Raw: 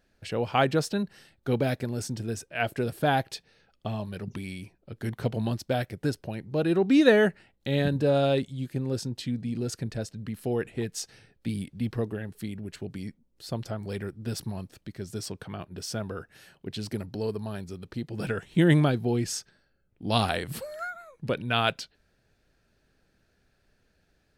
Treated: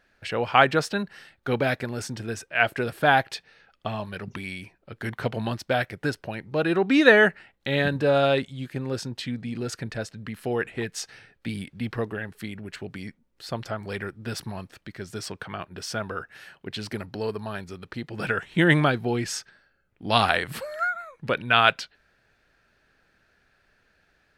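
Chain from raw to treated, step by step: peaking EQ 1.6 kHz +12 dB 2.6 oct; trim -2 dB

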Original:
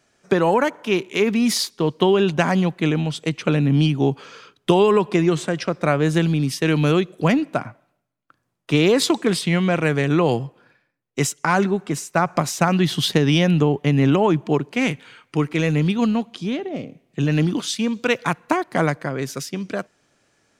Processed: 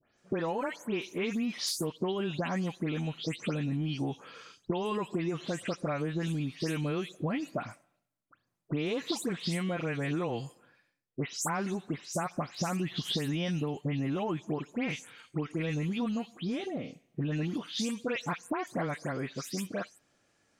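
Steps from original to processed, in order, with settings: delay that grows with frequency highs late, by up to 172 ms; compression, threshold -22 dBFS, peak gain reduction 10 dB; trim -7 dB

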